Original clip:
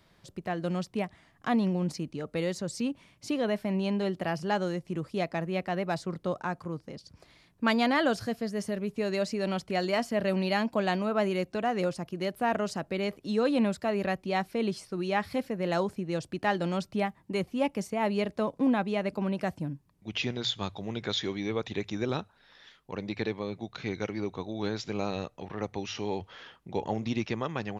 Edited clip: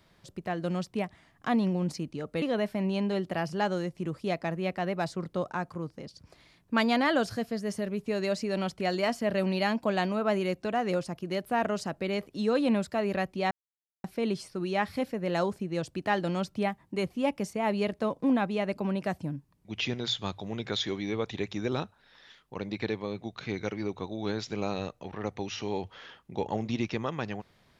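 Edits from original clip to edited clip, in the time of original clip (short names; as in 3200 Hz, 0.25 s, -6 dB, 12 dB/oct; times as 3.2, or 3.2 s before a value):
2.42–3.32 cut
14.41 insert silence 0.53 s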